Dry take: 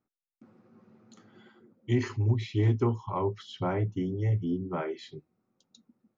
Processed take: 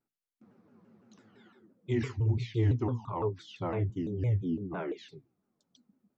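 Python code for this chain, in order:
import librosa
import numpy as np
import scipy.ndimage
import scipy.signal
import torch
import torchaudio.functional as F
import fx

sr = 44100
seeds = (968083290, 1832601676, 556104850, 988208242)

y = fx.hpss(x, sr, part='percussive', gain_db=-6)
y = fx.hum_notches(y, sr, base_hz=60, count=5)
y = fx.vibrato_shape(y, sr, shape='saw_down', rate_hz=5.9, depth_cents=250.0)
y = y * 10.0 ** (-1.0 / 20.0)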